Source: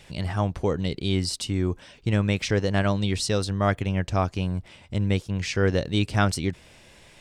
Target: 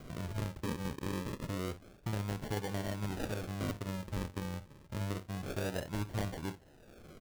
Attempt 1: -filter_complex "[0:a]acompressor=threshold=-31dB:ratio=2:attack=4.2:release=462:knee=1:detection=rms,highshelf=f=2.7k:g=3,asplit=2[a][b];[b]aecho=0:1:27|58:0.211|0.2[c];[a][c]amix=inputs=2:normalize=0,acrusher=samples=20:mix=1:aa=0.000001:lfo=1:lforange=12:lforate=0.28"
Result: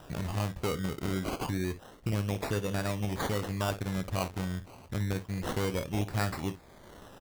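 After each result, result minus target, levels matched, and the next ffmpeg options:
compressor: peak gain reduction -5.5 dB; decimation with a swept rate: distortion -6 dB
-filter_complex "[0:a]acompressor=threshold=-42dB:ratio=2:attack=4.2:release=462:knee=1:detection=rms,highshelf=f=2.7k:g=3,asplit=2[a][b];[b]aecho=0:1:27|58:0.211|0.2[c];[a][c]amix=inputs=2:normalize=0,acrusher=samples=20:mix=1:aa=0.000001:lfo=1:lforange=12:lforate=0.28"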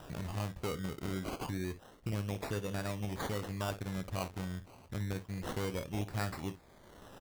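decimation with a swept rate: distortion -6 dB
-filter_complex "[0:a]acompressor=threshold=-42dB:ratio=2:attack=4.2:release=462:knee=1:detection=rms,highshelf=f=2.7k:g=3,asplit=2[a][b];[b]aecho=0:1:27|58:0.211|0.2[c];[a][c]amix=inputs=2:normalize=0,acrusher=samples=49:mix=1:aa=0.000001:lfo=1:lforange=29.4:lforate=0.28"

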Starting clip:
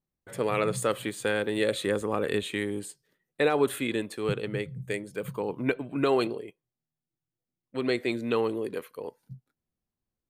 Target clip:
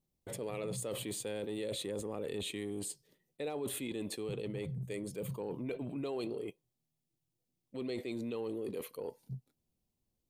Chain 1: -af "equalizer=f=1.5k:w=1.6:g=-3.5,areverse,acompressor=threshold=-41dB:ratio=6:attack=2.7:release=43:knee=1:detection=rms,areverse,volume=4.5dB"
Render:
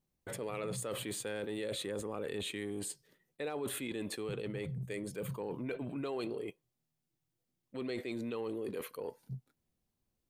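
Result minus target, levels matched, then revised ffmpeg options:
2000 Hz band +4.0 dB
-af "equalizer=f=1.5k:w=1.6:g=-14,areverse,acompressor=threshold=-41dB:ratio=6:attack=2.7:release=43:knee=1:detection=rms,areverse,volume=4.5dB"

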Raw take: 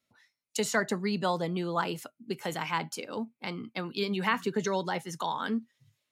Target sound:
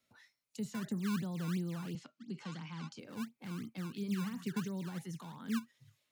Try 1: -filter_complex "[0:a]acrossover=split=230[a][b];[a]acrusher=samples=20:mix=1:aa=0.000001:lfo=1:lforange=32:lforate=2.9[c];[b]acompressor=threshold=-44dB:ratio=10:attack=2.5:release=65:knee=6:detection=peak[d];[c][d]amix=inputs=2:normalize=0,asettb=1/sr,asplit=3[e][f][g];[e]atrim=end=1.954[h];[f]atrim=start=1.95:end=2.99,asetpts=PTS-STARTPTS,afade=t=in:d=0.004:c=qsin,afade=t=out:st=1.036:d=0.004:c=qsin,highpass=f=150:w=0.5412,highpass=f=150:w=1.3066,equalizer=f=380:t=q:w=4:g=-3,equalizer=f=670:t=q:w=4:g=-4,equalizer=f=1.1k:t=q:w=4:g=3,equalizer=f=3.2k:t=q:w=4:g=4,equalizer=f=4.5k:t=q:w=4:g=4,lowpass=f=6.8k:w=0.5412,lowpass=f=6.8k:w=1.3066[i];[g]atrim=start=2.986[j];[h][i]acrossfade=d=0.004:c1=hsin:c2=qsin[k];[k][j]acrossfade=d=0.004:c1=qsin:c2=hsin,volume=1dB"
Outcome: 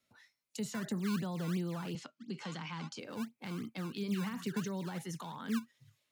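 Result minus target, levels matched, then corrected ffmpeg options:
compressor: peak gain reduction -7.5 dB
-filter_complex "[0:a]acrossover=split=230[a][b];[a]acrusher=samples=20:mix=1:aa=0.000001:lfo=1:lforange=32:lforate=2.9[c];[b]acompressor=threshold=-52.5dB:ratio=10:attack=2.5:release=65:knee=6:detection=peak[d];[c][d]amix=inputs=2:normalize=0,asettb=1/sr,asplit=3[e][f][g];[e]atrim=end=1.954[h];[f]atrim=start=1.95:end=2.99,asetpts=PTS-STARTPTS,afade=t=in:d=0.004:c=qsin,afade=t=out:st=1.036:d=0.004:c=qsin,highpass=f=150:w=0.5412,highpass=f=150:w=1.3066,equalizer=f=380:t=q:w=4:g=-3,equalizer=f=670:t=q:w=4:g=-4,equalizer=f=1.1k:t=q:w=4:g=3,equalizer=f=3.2k:t=q:w=4:g=4,equalizer=f=4.5k:t=q:w=4:g=4,lowpass=f=6.8k:w=0.5412,lowpass=f=6.8k:w=1.3066[i];[g]atrim=start=2.986[j];[h][i]acrossfade=d=0.004:c1=hsin:c2=qsin[k];[k][j]acrossfade=d=0.004:c1=qsin:c2=hsin,volume=1dB"

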